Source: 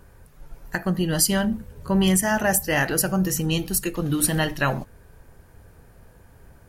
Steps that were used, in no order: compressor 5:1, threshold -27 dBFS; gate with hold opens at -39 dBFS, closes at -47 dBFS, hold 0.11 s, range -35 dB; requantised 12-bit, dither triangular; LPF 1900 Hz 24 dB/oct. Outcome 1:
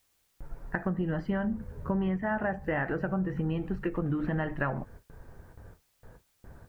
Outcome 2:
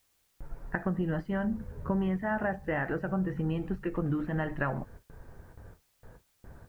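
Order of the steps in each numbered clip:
LPF > gate with hold > requantised > compressor; compressor > LPF > gate with hold > requantised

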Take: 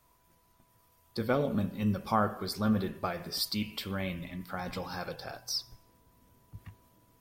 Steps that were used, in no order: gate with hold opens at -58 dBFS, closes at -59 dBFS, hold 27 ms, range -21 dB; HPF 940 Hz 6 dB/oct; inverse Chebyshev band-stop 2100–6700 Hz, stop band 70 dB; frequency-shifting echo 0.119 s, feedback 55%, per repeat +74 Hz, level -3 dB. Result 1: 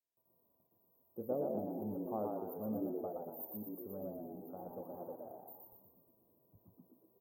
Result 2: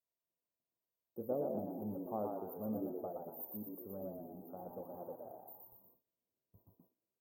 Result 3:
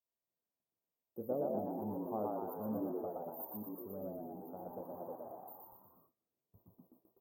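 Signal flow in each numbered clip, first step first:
frequency-shifting echo > HPF > gate with hold > inverse Chebyshev band-stop; HPF > frequency-shifting echo > inverse Chebyshev band-stop > gate with hold; inverse Chebyshev band-stop > frequency-shifting echo > HPF > gate with hold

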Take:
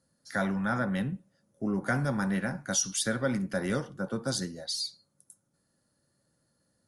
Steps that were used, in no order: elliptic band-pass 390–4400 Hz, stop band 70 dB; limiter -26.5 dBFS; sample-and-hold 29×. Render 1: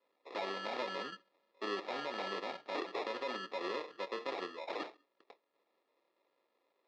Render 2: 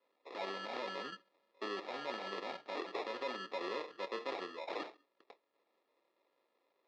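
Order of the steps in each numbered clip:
sample-and-hold > elliptic band-pass > limiter; limiter > sample-and-hold > elliptic band-pass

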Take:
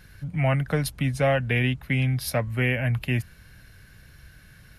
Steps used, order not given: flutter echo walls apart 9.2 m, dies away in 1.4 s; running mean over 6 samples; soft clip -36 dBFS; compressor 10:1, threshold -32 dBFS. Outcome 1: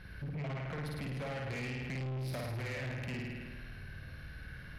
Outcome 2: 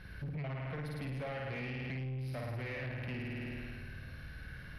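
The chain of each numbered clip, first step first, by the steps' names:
running mean > compressor > flutter echo > soft clip; flutter echo > compressor > soft clip > running mean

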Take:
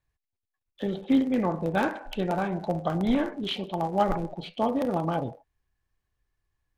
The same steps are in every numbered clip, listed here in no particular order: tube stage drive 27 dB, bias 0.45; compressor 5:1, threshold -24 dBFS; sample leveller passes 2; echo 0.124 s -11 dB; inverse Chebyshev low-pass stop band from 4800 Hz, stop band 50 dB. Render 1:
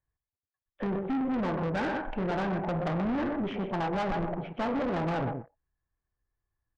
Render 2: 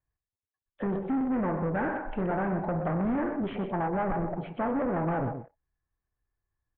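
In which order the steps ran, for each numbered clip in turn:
echo > compressor > sample leveller > inverse Chebyshev low-pass > tube stage; compressor > tube stage > echo > sample leveller > inverse Chebyshev low-pass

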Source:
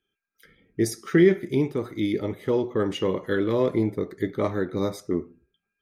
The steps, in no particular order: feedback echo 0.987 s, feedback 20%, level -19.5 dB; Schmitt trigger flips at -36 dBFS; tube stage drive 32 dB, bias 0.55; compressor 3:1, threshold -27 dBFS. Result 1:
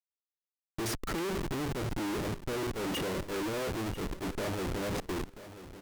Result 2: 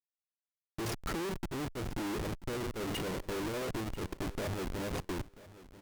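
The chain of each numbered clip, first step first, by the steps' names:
Schmitt trigger > feedback echo > compressor > tube stage; compressor > Schmitt trigger > feedback echo > tube stage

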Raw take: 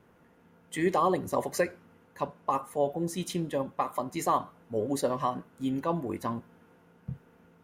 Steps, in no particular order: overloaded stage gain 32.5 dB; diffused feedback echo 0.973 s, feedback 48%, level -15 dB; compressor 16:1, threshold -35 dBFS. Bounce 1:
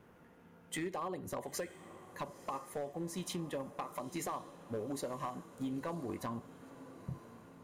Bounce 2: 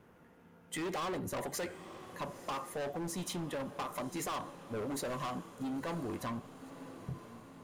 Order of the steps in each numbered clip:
compressor > overloaded stage > diffused feedback echo; overloaded stage > diffused feedback echo > compressor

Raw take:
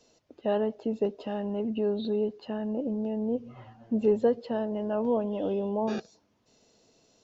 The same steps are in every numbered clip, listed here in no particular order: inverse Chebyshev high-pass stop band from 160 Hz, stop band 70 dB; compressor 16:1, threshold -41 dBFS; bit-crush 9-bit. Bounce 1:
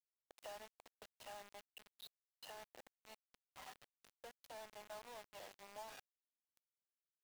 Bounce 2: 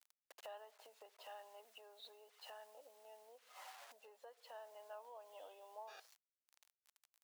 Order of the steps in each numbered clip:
compressor > inverse Chebyshev high-pass > bit-crush; bit-crush > compressor > inverse Chebyshev high-pass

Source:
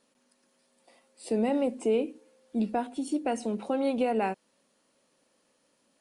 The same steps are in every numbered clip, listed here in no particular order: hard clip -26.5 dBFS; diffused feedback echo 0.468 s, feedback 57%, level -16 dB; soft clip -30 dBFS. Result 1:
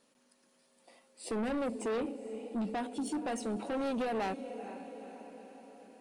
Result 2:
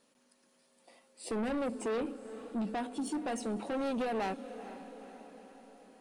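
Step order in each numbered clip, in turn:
diffused feedback echo > hard clip > soft clip; hard clip > diffused feedback echo > soft clip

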